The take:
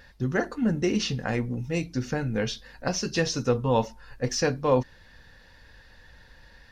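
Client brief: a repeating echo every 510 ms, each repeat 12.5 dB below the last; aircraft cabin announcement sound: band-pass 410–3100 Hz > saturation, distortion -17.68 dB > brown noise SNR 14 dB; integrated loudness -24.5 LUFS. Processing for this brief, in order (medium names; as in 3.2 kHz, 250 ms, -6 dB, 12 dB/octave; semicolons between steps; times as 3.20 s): band-pass 410–3100 Hz; feedback delay 510 ms, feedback 24%, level -12.5 dB; saturation -17 dBFS; brown noise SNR 14 dB; trim +8 dB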